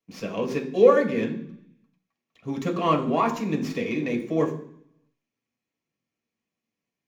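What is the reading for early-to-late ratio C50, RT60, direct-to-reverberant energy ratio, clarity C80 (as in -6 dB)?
10.5 dB, 0.65 s, 0.0 dB, 13.5 dB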